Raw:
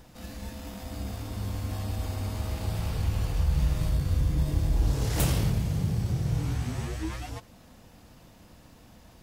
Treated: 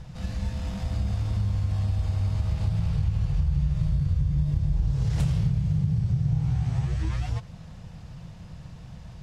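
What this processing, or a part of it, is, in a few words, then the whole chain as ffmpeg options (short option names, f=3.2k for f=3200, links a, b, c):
jukebox: -filter_complex "[0:a]asettb=1/sr,asplit=3[a][b][c];[a]atrim=end=6.274[d];[b]atrim=start=6.27:end=6.85,asetpts=PTS-STARTPTS,afade=t=in:d=0.004:c=qsin,afade=t=out:st=0.576:d=0.004:c=qsin,equalizer=f=780:w=4.4:g=8[e];[c]atrim=start=6.846[f];[d][e]acrossfade=d=0.004:c1=hsin:c2=qsin[g];[g][f]acrossfade=d=0.004:c1=qsin:c2=hsin,lowpass=6.6k,lowshelf=f=200:t=q:w=3:g=8,acompressor=threshold=-26dB:ratio=4,volume=3dB"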